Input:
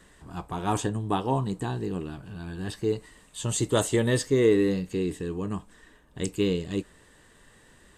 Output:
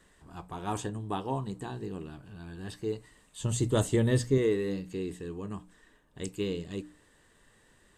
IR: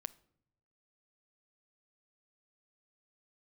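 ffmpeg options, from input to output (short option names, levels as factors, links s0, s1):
-filter_complex "[0:a]asettb=1/sr,asplit=3[s0][s1][s2];[s0]atrim=end=3.404[s3];[s1]atrim=start=3.4:end=4.38,asetpts=PTS-STARTPTS,afade=t=in:d=0.004:c=qsin,afade=t=out:st=0.976:d=0.004:c=qsin,lowshelf=f=260:g=11.5[s4];[s2]atrim=start=4.376[s5];[s3][s4]acrossfade=d=0.004:c1=hsin:c2=qsin[s6];[s6][s5]acrossfade=d=0.004:c1=qsin:c2=hsin,bandreject=f=60:t=h:w=6,bandreject=f=120:t=h:w=6,bandreject=f=180:t=h:w=6,bandreject=f=240:t=h:w=6,bandreject=f=300:t=h:w=6,volume=0.473"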